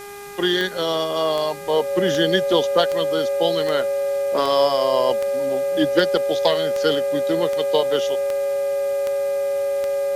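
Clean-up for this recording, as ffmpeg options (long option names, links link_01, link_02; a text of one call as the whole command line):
ffmpeg -i in.wav -af "adeclick=threshold=4,bandreject=frequency=405.6:width_type=h:width=4,bandreject=frequency=811.2:width_type=h:width=4,bandreject=frequency=1216.8:width_type=h:width=4,bandreject=frequency=1622.4:width_type=h:width=4,bandreject=frequency=2028:width_type=h:width=4,bandreject=frequency=2433.6:width_type=h:width=4,bandreject=frequency=560:width=30,afwtdn=0.0071" out.wav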